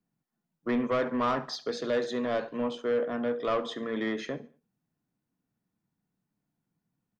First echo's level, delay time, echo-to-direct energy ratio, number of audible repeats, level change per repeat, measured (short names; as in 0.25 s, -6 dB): -20.0 dB, 71 ms, -19.5 dB, 2, -8.0 dB